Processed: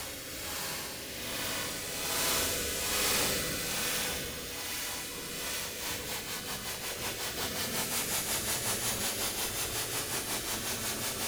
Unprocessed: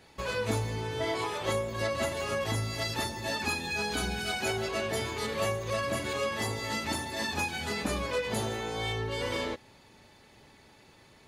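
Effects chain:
compressing power law on the bin magnitudes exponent 0.22
extreme stretch with random phases 29×, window 0.05 s, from 0:08.07
rotating-speaker cabinet horn 1.2 Hz, later 5.5 Hz, at 0:05.34

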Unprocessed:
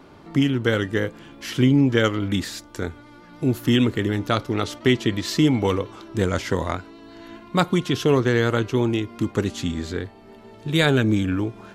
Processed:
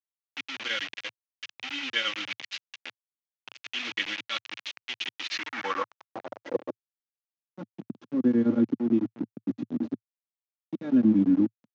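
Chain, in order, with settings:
granular cloud 136 ms, grains 8.9 per second, spray 14 ms, pitch spread up and down by 0 semitones
comb filter 3.6 ms, depth 88%
in parallel at −1 dB: compressor whose output falls as the input rises −22 dBFS, ratio −0.5
on the sum: volume swells 200 ms
bit reduction 4 bits
Chebyshev band-pass filter 110–6,400 Hz, order 4
band-pass filter sweep 2,700 Hz → 230 Hz, 0:05.22–0:07.11

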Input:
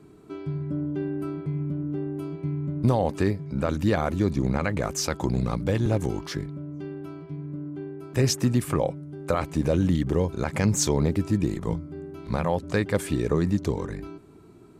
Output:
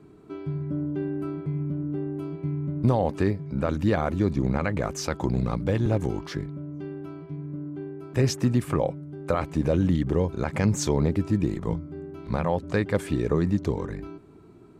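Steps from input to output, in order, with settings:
high-shelf EQ 4,900 Hz −9 dB

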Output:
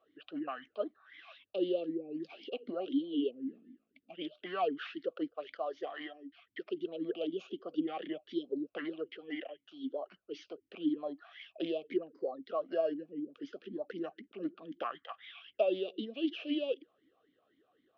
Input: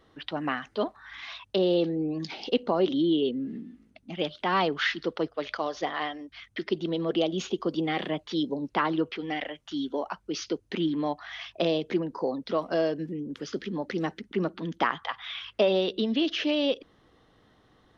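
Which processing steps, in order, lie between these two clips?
formant filter swept between two vowels a-i 3.9 Hz

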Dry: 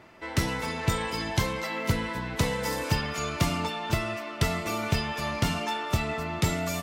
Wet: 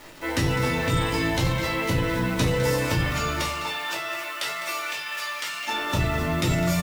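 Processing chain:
bit reduction 8 bits
downward compressor, threshold −28 dBFS, peak gain reduction 9.5 dB
0:03.36–0:05.67: high-pass filter 610 Hz → 1,500 Hz 12 dB per octave
single-tap delay 205 ms −12.5 dB
rectangular room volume 160 cubic metres, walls furnished, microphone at 2.6 metres
level that may fall only so fast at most 39 dB per second
level +1.5 dB

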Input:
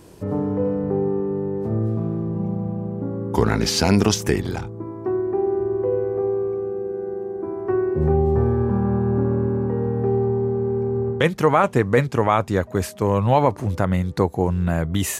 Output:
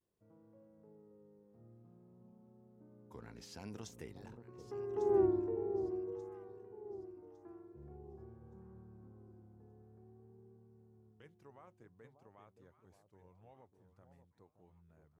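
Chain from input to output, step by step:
source passing by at 0:05.21, 23 m/s, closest 1.9 metres
delay that swaps between a low-pass and a high-pass 584 ms, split 870 Hz, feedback 56%, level −8 dB
pitch vibrato 0.5 Hz 51 cents
level −5.5 dB

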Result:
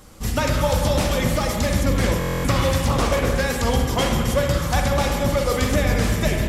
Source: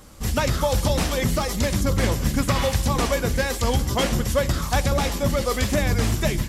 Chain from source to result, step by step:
spring reverb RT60 1.9 s, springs 43/47/59 ms, chirp 65 ms, DRR 1.5 dB
buffer that repeats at 0:02.19, samples 1,024, times 10
0:02.83–0:03.40: highs frequency-modulated by the lows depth 0.33 ms

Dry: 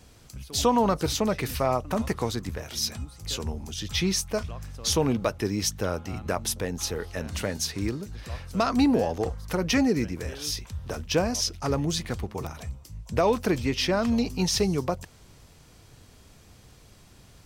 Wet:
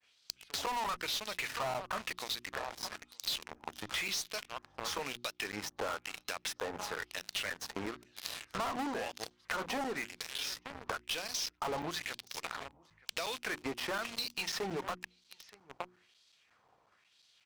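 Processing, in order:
downward expander −49 dBFS
on a send: single-tap delay 920 ms −20.5 dB
on the sum: auto-filter band-pass sine 1 Hz 820–4,100 Hz
harmonic generator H 6 −22 dB, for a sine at −15 dBFS
in parallel at −3 dB: fuzz pedal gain 43 dB, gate −49 dBFS
on the sum: mains-hum notches 60/120/180/240/300/360 Hz
downward compressor 5 to 1, threshold −37 dBFS, peak gain reduction 20 dB
regular buffer underruns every 0.18 s, samples 256, zero, from 0:00.66

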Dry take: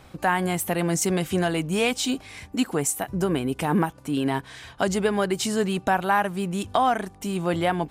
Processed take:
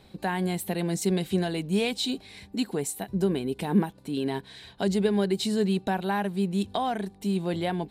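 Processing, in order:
thirty-one-band graphic EQ 200 Hz +10 dB, 400 Hz +7 dB, 1,250 Hz −9 dB, 4,000 Hz +11 dB, 6,300 Hz −5 dB
level −7 dB

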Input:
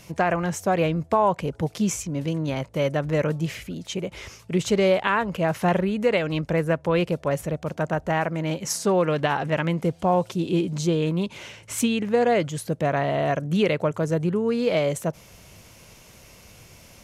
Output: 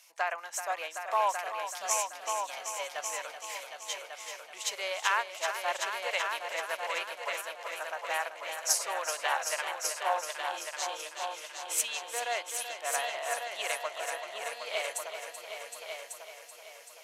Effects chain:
high-pass filter 720 Hz 24 dB per octave
parametric band 12,000 Hz +7.5 dB 2.8 octaves
echo machine with several playback heads 382 ms, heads all three, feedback 56%, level −7.5 dB
expander for the loud parts 1.5 to 1, over −35 dBFS
level −5 dB

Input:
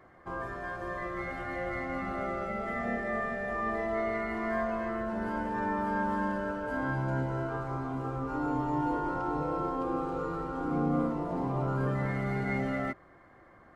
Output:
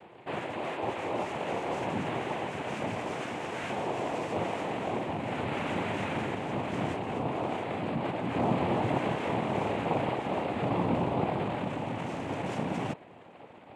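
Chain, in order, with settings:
hard clipping −35 dBFS, distortion −7 dB
hollow resonant body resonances 320/740 Hz, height 17 dB, ringing for 35 ms
cochlear-implant simulation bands 4
level −3.5 dB

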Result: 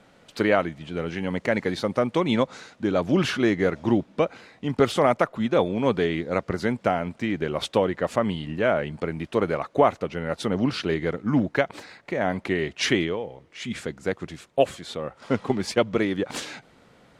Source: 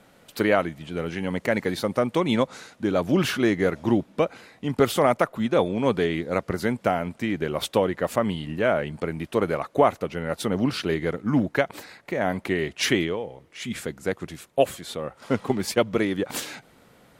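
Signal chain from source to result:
low-pass filter 7,000 Hz 12 dB per octave

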